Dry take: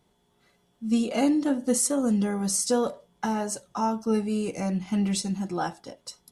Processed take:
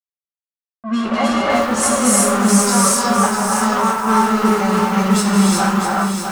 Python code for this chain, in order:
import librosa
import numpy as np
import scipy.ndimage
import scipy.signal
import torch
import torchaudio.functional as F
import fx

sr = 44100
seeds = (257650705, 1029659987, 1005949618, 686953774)

y = fx.spec_trails(x, sr, decay_s=0.44)
y = fx.highpass(y, sr, hz=42.0, slope=6)
y = fx.high_shelf(y, sr, hz=5400.0, db=5.0)
y = y + 0.95 * np.pad(y, (int(5.2 * sr / 1000.0), 0))[:len(y)]
y = y + 10.0 ** (-24.0 / 20.0) * np.pad(y, (int(491 * sr / 1000.0), 0))[:len(y)]
y = np.where(np.abs(y) >= 10.0 ** (-25.5 / 20.0), y, 0.0)
y = fx.rev_gated(y, sr, seeds[0], gate_ms=400, shape='rising', drr_db=-3.5)
y = fx.env_lowpass(y, sr, base_hz=570.0, full_db=-11.0)
y = fx.peak_eq(y, sr, hz=1200.0, db=13.5, octaves=1.0)
y = fx.echo_crushed(y, sr, ms=652, feedback_pct=35, bits=5, wet_db=-6.0)
y = y * librosa.db_to_amplitude(-1.0)